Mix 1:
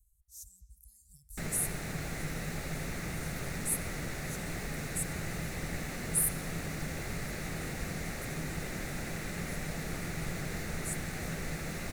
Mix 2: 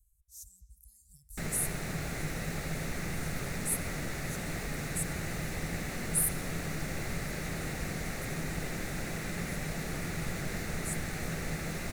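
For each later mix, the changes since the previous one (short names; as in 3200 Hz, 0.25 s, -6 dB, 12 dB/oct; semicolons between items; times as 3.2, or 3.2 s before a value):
background: send on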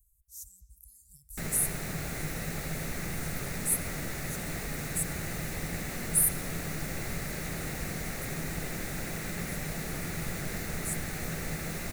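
master: add high shelf 12000 Hz +11.5 dB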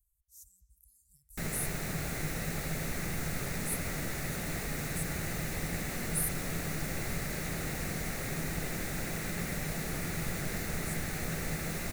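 speech -9.0 dB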